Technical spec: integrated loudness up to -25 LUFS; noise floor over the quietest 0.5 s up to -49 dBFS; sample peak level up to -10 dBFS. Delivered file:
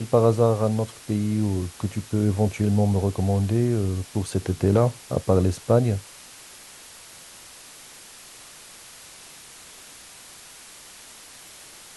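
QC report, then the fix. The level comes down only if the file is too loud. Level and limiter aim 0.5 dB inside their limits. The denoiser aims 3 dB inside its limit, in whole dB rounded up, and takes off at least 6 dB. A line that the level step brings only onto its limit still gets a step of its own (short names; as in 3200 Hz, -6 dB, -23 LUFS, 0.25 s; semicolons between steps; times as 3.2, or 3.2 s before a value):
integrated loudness -23.5 LUFS: fail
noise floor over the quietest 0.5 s -45 dBFS: fail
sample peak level -5.0 dBFS: fail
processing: denoiser 6 dB, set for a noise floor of -45 dBFS; gain -2 dB; limiter -10.5 dBFS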